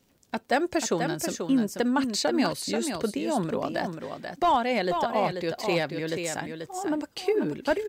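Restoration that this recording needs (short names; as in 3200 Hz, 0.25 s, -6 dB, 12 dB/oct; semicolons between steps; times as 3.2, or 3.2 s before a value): clip repair -15 dBFS; de-click; inverse comb 0.486 s -6.5 dB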